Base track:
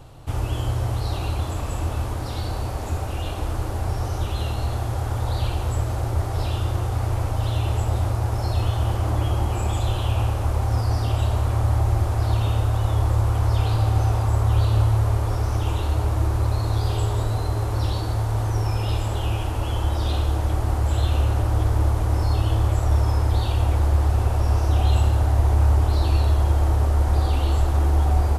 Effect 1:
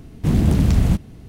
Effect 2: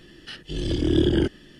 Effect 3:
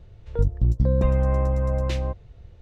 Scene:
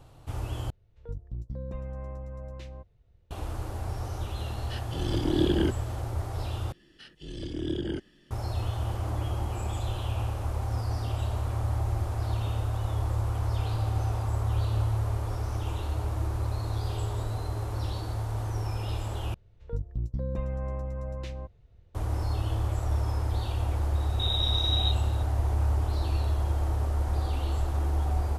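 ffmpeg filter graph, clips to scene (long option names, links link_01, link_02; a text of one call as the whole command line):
ffmpeg -i bed.wav -i cue0.wav -i cue1.wav -i cue2.wav -filter_complex "[3:a]asplit=2[link_01][link_02];[2:a]asplit=2[link_03][link_04];[0:a]volume=-8.5dB[link_05];[1:a]lowpass=frequency=3300:width_type=q:width=0.5098,lowpass=frequency=3300:width_type=q:width=0.6013,lowpass=frequency=3300:width_type=q:width=0.9,lowpass=frequency=3300:width_type=q:width=2.563,afreqshift=-3900[link_06];[link_05]asplit=4[link_07][link_08][link_09][link_10];[link_07]atrim=end=0.704[link_11];[link_01]atrim=end=2.61,asetpts=PTS-STARTPTS,volume=-16.5dB[link_12];[link_08]atrim=start=3.306:end=6.724[link_13];[link_04]atrim=end=1.59,asetpts=PTS-STARTPTS,volume=-11.5dB[link_14];[link_09]atrim=start=8.306:end=19.344[link_15];[link_02]atrim=end=2.61,asetpts=PTS-STARTPTS,volume=-11.5dB[link_16];[link_10]atrim=start=21.946[link_17];[link_03]atrim=end=1.59,asetpts=PTS-STARTPTS,volume=-4.5dB,afade=type=in:duration=0.004:curve=hsin,afade=type=out:start_time=1.586:duration=0.004:curve=hsin,adelay=4430[link_18];[link_06]atrim=end=1.28,asetpts=PTS-STARTPTS,volume=-15dB,afade=type=in:duration=0.004:curve=hsin,afade=type=out:start_time=1.276:duration=0.004:curve=hsin,adelay=23950[link_19];[link_11][link_12]acrossfade=duration=0.004:curve1=hsin:curve2=hsin[link_20];[link_20][link_13]acrossfade=duration=0.004:curve1=hsin:curve2=hsin[link_21];[link_21][link_14]acrossfade=duration=0.004:curve1=hsin:curve2=hsin[link_22];[link_22][link_15]acrossfade=duration=0.004:curve1=hsin:curve2=hsin[link_23];[link_23][link_16]acrossfade=duration=0.004:curve1=hsin:curve2=hsin[link_24];[link_24][link_17]acrossfade=duration=0.004:curve1=hsin:curve2=hsin[link_25];[link_25][link_18][link_19]amix=inputs=3:normalize=0" out.wav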